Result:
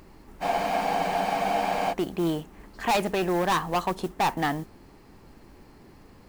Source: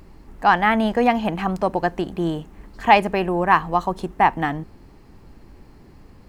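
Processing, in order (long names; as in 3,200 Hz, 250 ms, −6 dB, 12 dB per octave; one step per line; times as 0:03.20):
low-shelf EQ 160 Hz −8.5 dB
gain into a clipping stage and back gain 20.5 dB
noise that follows the level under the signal 23 dB
frozen spectrum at 0:00.44, 1.48 s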